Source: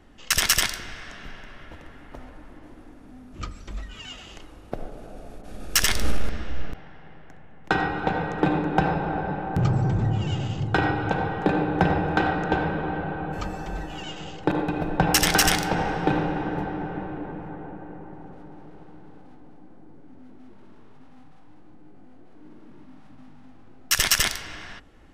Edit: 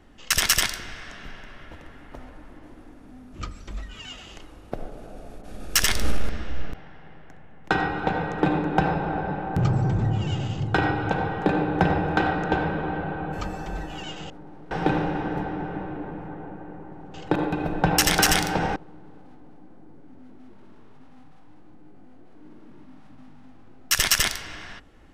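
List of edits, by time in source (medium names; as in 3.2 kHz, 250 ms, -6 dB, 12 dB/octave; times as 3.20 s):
14.30–15.92 s: swap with 18.35–18.76 s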